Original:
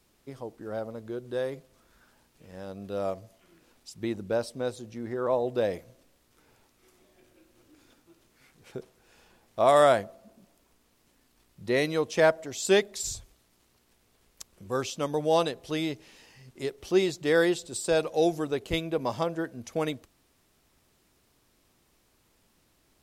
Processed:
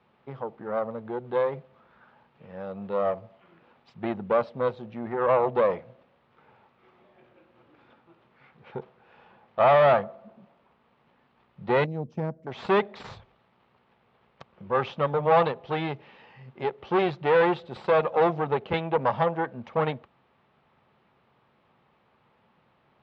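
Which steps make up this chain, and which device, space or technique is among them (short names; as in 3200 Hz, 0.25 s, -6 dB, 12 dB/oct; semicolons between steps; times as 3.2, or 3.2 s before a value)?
11.84–12.47 EQ curve 270 Hz 0 dB, 760 Hz -28 dB, 3600 Hz -26 dB, 5700 Hz -7 dB; guitar amplifier (tube stage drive 26 dB, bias 0.75; tone controls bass -2 dB, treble -12 dB; speaker cabinet 100–3600 Hz, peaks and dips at 140 Hz +6 dB, 210 Hz +4 dB, 300 Hz -8 dB, 530 Hz +3 dB, 850 Hz +7 dB, 1200 Hz +5 dB); gain +8 dB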